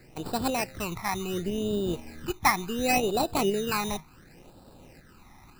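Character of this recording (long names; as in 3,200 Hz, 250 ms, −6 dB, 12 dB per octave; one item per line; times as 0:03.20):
aliases and images of a low sample rate 3,300 Hz, jitter 0%
phaser sweep stages 12, 0.7 Hz, lowest notch 480–2,100 Hz
tremolo saw up 2 Hz, depth 35%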